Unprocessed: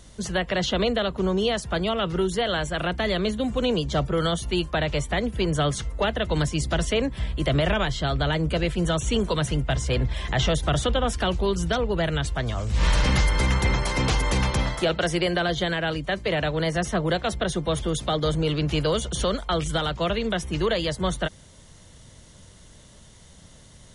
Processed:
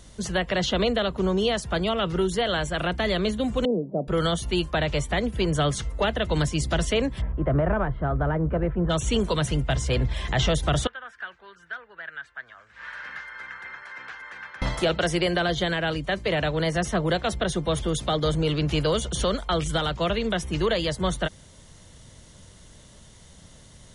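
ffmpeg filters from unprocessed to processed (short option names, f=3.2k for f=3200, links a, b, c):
-filter_complex "[0:a]asettb=1/sr,asplit=3[a][b][c];[a]atrim=end=3.654[d];[b]atrim=start=3.65:end=4.08,asetpts=PTS-STARTPTS,afade=t=in:d=0.004:c=qsin,afade=t=out:st=0.426:d=0.004:c=qsin,asuperpass=centerf=340:order=8:qfactor=0.65[e];[c]atrim=start=4.076[f];[d][e]acrossfade=d=0.004:c1=hsin:c2=qsin[g];[g][f]acrossfade=d=0.004:c1=qsin:c2=hsin,asplit=3[h][i][j];[h]afade=t=out:st=7.2:d=0.02[k];[i]lowpass=f=1.5k:w=0.5412,lowpass=f=1.5k:w=1.3066,afade=t=in:st=7.2:d=0.02,afade=t=out:st=8.89:d=0.02[l];[j]afade=t=in:st=8.89:d=0.02[m];[k][l][m]amix=inputs=3:normalize=0,asettb=1/sr,asplit=3[n][o][p];[n]atrim=end=10.874[q];[o]atrim=start=10.87:end=14.62,asetpts=PTS-STARTPTS,afade=t=in:d=0.004:c=qsin,afade=t=out:st=3.746:d=0.004:c=qsin,bandpass=f=1.6k:t=q:w=6.2[r];[p]atrim=start=14.616[s];[q][r]acrossfade=d=0.004:c1=hsin:c2=qsin[t];[t][s]acrossfade=d=0.004:c1=qsin:c2=hsin"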